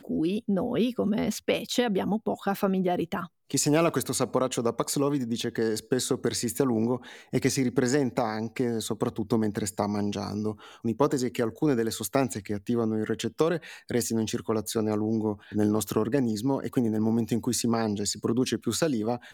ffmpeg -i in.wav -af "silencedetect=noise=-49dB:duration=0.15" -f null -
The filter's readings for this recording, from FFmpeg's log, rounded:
silence_start: 3.27
silence_end: 3.50 | silence_duration: 0.22